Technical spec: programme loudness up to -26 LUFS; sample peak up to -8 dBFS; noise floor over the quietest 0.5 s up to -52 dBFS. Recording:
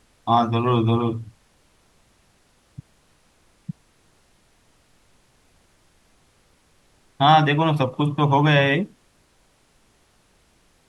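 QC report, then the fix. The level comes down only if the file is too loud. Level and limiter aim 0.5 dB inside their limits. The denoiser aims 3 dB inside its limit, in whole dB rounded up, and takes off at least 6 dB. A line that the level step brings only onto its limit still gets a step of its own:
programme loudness -19.5 LUFS: fail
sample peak -3.0 dBFS: fail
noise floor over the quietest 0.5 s -61 dBFS: pass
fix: trim -7 dB

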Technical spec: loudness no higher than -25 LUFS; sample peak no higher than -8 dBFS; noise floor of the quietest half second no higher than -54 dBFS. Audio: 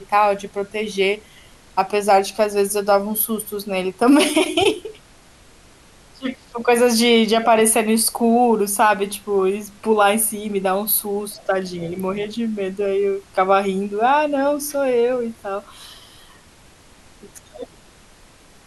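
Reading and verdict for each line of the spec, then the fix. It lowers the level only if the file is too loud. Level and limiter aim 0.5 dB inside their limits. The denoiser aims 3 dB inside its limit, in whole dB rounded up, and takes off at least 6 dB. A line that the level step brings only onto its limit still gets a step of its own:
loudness -19.0 LUFS: fail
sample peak -5.0 dBFS: fail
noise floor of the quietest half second -48 dBFS: fail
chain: trim -6.5 dB

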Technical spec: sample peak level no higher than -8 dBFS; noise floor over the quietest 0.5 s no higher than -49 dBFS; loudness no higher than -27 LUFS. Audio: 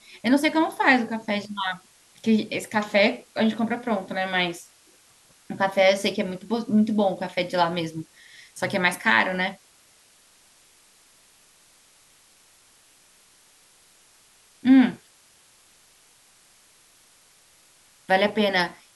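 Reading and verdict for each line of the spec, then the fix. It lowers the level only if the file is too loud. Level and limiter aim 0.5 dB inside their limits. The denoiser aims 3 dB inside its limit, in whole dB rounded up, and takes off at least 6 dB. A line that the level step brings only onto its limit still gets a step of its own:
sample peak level -4.0 dBFS: fail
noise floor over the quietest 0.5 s -57 dBFS: pass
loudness -23.0 LUFS: fail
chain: trim -4.5 dB

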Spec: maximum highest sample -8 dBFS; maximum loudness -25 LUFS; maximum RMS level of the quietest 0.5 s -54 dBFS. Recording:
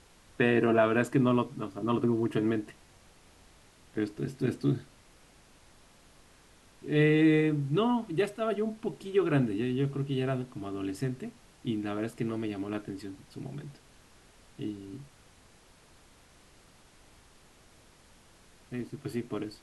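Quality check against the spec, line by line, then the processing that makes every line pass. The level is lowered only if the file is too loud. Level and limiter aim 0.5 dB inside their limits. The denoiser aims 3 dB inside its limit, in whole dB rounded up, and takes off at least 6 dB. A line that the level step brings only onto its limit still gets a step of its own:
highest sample -11.0 dBFS: pass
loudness -30.0 LUFS: pass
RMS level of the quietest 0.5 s -59 dBFS: pass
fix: none needed

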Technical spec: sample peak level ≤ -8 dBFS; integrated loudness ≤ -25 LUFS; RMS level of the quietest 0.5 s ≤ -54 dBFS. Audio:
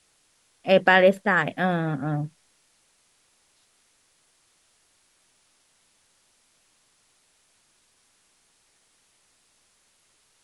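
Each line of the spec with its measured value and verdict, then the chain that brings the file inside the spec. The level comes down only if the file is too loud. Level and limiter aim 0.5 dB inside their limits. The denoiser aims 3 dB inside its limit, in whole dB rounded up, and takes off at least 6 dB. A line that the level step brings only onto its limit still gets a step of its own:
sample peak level -4.5 dBFS: fail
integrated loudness -22.0 LUFS: fail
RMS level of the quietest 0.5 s -65 dBFS: pass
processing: trim -3.5 dB; peak limiter -8.5 dBFS

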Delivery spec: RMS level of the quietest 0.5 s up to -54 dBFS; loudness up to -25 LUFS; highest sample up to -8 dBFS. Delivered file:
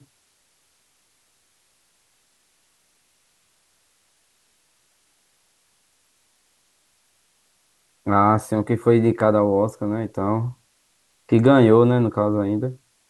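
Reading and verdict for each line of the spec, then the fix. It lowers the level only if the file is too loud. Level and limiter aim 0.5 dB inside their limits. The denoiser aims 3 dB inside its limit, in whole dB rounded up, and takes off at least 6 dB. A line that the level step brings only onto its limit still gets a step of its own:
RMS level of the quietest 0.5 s -64 dBFS: pass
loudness -19.5 LUFS: fail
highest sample -3.5 dBFS: fail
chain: trim -6 dB

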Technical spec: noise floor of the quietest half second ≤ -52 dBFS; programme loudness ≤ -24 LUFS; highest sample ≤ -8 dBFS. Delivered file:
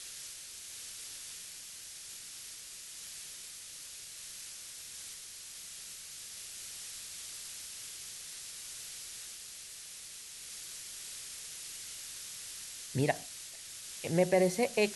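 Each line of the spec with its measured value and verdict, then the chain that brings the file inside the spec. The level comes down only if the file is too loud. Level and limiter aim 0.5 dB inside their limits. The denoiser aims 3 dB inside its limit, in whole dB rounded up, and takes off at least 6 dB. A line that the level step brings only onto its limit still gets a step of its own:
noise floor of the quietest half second -48 dBFS: fail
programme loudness -39.0 LUFS: pass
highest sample -14.5 dBFS: pass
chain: noise reduction 7 dB, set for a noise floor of -48 dBFS

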